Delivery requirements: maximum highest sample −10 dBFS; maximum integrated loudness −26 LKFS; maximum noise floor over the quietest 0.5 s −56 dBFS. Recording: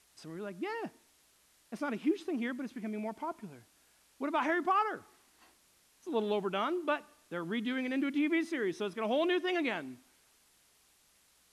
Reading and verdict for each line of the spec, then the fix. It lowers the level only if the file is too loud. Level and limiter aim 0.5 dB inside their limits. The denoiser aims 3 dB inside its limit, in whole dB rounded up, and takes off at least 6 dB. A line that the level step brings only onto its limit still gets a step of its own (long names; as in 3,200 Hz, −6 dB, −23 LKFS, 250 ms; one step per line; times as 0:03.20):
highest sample −20.5 dBFS: in spec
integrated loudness −34.0 LKFS: in spec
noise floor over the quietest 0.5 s −68 dBFS: in spec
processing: no processing needed